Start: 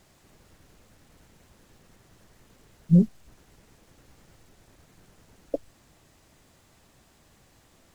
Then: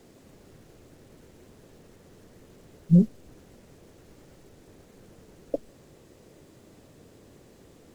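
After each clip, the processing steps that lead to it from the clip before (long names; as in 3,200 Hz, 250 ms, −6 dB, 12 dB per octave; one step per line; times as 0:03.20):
noise in a band 70–520 Hz −55 dBFS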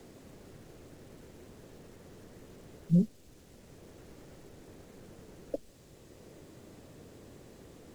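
multiband upward and downward compressor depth 40%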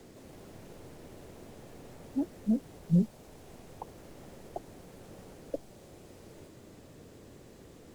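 delay with pitch and tempo change per echo 164 ms, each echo +4 semitones, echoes 2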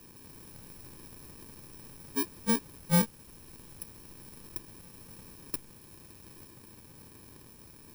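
samples in bit-reversed order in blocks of 64 samples
floating-point word with a short mantissa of 2 bits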